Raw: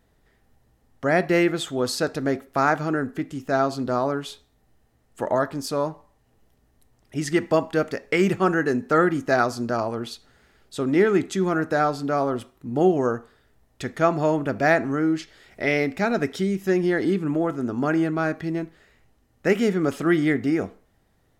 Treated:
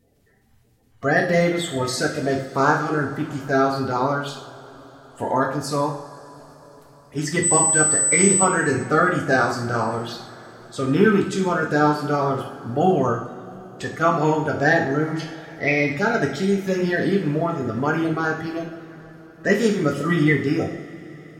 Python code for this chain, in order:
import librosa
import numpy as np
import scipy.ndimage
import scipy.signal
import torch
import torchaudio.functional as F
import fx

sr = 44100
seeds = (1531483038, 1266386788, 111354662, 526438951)

y = fx.spec_quant(x, sr, step_db=30)
y = fx.dmg_tone(y, sr, hz=8000.0, level_db=-23.0, at=(7.42, 8.44), fade=0.02)
y = fx.rev_double_slope(y, sr, seeds[0], early_s=0.6, late_s=5.0, knee_db=-20, drr_db=-0.5)